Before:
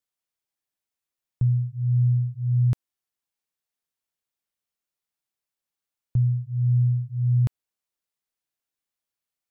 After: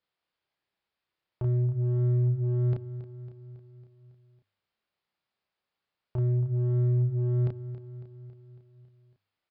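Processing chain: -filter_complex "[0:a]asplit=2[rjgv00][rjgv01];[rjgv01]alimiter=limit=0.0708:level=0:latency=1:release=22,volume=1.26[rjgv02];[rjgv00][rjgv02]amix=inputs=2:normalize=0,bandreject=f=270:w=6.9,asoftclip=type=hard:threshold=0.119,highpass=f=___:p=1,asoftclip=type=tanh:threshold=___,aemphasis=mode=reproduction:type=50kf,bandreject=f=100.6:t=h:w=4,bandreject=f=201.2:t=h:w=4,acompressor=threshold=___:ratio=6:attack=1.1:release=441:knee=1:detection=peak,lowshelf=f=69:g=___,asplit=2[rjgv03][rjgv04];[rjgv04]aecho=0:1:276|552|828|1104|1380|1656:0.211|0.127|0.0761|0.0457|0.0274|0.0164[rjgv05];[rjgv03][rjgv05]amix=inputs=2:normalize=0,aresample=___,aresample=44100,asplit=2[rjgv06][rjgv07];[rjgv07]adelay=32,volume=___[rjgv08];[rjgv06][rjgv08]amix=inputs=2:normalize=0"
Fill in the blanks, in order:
41, 0.0841, 0.0447, -3.5, 11025, 0.75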